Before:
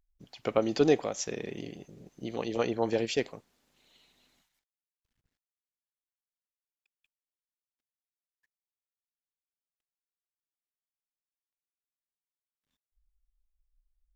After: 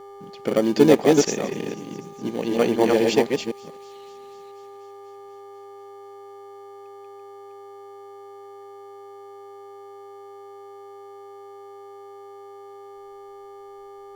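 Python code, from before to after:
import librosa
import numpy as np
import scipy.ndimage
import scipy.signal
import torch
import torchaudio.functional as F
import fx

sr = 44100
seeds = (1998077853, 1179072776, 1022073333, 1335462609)

p1 = fx.reverse_delay(x, sr, ms=251, wet_db=-2.5)
p2 = fx.rotary_switch(p1, sr, hz=0.6, then_hz=6.7, switch_at_s=3.65)
p3 = fx.dmg_buzz(p2, sr, base_hz=400.0, harmonics=3, level_db=-51.0, tilt_db=-4, odd_only=False)
p4 = fx.sample_hold(p3, sr, seeds[0], rate_hz=1300.0, jitter_pct=0)
p5 = p3 + F.gain(torch.from_numpy(p4), -11.5).numpy()
p6 = fx.low_shelf_res(p5, sr, hz=130.0, db=-8.5, q=1.5)
p7 = p6 + fx.echo_wet_highpass(p6, sr, ms=245, feedback_pct=75, hz=3900.0, wet_db=-20.0, dry=0)
y = F.gain(torch.from_numpy(p7), 7.5).numpy()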